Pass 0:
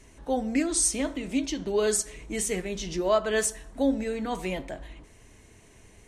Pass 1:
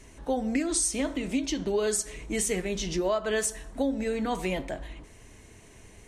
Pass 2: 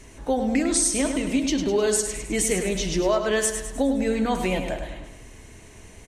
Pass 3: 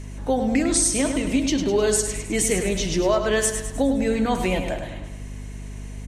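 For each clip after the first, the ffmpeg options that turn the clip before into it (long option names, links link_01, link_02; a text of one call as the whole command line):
ffmpeg -i in.wav -af "acompressor=threshold=-26dB:ratio=6,volume=2.5dB" out.wav
ffmpeg -i in.wav -af "aecho=1:1:103|206|309|412|515|618:0.398|0.199|0.0995|0.0498|0.0249|0.0124,volume=4.5dB" out.wav
ffmpeg -i in.wav -af "aeval=exprs='val(0)+0.0178*(sin(2*PI*50*n/s)+sin(2*PI*2*50*n/s)/2+sin(2*PI*3*50*n/s)/3+sin(2*PI*4*50*n/s)/4+sin(2*PI*5*50*n/s)/5)':channel_layout=same,volume=1.5dB" out.wav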